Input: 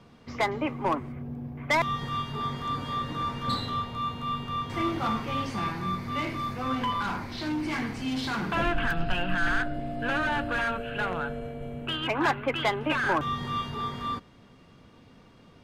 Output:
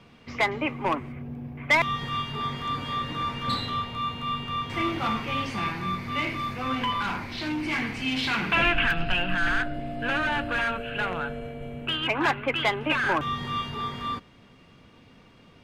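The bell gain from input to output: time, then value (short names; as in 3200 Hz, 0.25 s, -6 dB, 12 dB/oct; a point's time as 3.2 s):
bell 2500 Hz 0.92 oct
7.74 s +8 dB
8.24 s +14.5 dB
8.78 s +14.5 dB
9.3 s +5.5 dB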